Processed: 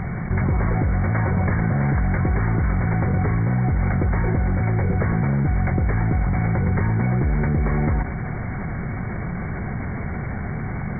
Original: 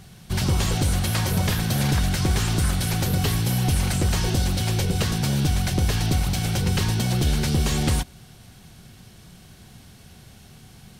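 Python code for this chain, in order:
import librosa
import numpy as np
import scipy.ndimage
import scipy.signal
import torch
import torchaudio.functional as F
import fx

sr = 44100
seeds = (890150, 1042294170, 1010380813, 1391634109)

y = fx.cvsd(x, sr, bps=32000)
y = fx.brickwall_lowpass(y, sr, high_hz=2300.0)
y = fx.env_flatten(y, sr, amount_pct=70)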